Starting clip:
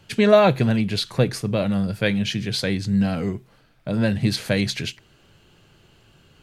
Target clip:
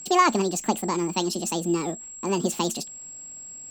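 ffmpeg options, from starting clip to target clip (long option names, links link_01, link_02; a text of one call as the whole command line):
ffmpeg -i in.wav -af "aeval=exprs='val(0)+0.02*sin(2*PI*4400*n/s)':channel_layout=same,asetrate=76440,aresample=44100,volume=-4dB" out.wav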